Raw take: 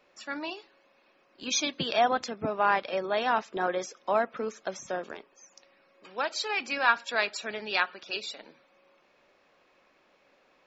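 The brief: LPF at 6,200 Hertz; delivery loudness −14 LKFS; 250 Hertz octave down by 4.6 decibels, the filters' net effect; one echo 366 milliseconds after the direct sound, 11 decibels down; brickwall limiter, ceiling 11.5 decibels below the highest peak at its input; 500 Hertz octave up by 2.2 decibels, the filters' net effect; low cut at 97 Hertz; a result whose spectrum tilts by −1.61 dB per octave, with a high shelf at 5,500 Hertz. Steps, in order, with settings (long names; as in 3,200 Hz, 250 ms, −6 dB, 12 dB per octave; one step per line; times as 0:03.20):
high-pass filter 97 Hz
low-pass filter 6,200 Hz
parametric band 250 Hz −8 dB
parametric band 500 Hz +4.5 dB
high-shelf EQ 5,500 Hz +4.5 dB
brickwall limiter −19.5 dBFS
single-tap delay 366 ms −11 dB
level +17.5 dB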